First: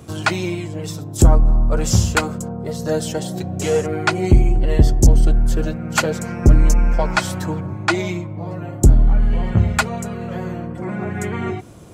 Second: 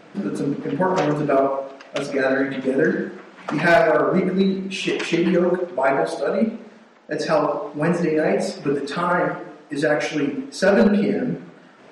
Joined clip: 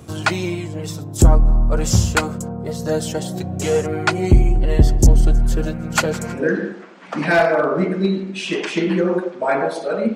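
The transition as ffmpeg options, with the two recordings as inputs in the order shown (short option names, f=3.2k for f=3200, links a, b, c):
-filter_complex "[0:a]asplit=3[a][b][c];[a]afade=t=out:st=4.87:d=0.02[d];[b]aecho=1:1:160|320|480|640:0.119|0.0606|0.0309|0.0158,afade=t=in:st=4.87:d=0.02,afade=t=out:st=6.46:d=0.02[e];[c]afade=t=in:st=6.46:d=0.02[f];[d][e][f]amix=inputs=3:normalize=0,apad=whole_dur=10.15,atrim=end=10.15,atrim=end=6.46,asetpts=PTS-STARTPTS[g];[1:a]atrim=start=2.68:end=6.51,asetpts=PTS-STARTPTS[h];[g][h]acrossfade=d=0.14:c1=tri:c2=tri"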